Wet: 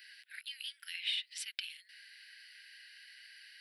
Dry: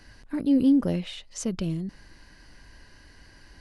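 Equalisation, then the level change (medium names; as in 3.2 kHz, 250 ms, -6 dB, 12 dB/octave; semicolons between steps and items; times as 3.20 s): steep high-pass 1.4 kHz 72 dB/octave; static phaser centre 2.9 kHz, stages 4; +6.0 dB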